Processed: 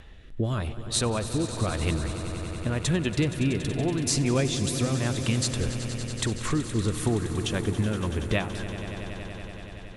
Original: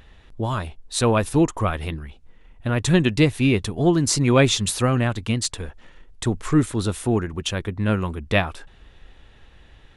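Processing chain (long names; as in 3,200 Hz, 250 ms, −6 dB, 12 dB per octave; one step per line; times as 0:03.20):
downward compressor, threshold −26 dBFS, peak gain reduction 14 dB
rotating-speaker cabinet horn 0.9 Hz, later 5 Hz, at 0:06.63
on a send: echo that builds up and dies away 94 ms, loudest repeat 5, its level −14.5 dB
on the sum: level +4 dB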